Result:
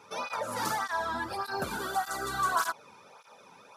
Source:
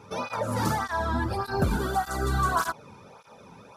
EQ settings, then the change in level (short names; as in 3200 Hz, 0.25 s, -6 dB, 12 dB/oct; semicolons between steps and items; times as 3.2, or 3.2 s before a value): HPF 890 Hz 6 dB/oct; 0.0 dB